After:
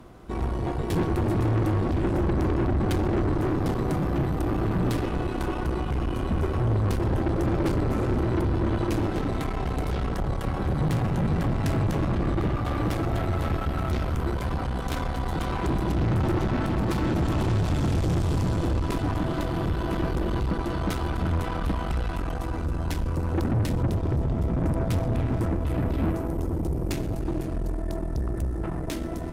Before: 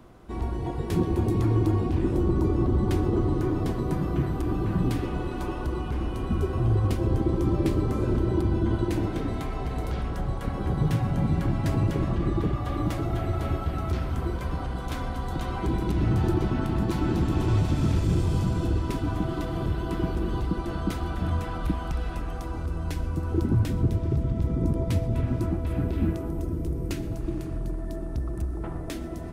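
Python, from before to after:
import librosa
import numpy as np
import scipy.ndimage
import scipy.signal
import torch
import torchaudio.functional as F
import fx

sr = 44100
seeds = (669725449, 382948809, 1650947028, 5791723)

y = fx.cheby_harmonics(x, sr, harmonics=(8,), levels_db=(-18,), full_scale_db=-12.5)
y = 10.0 ** (-23.0 / 20.0) * np.tanh(y / 10.0 ** (-23.0 / 20.0))
y = y * 10.0 ** (3.5 / 20.0)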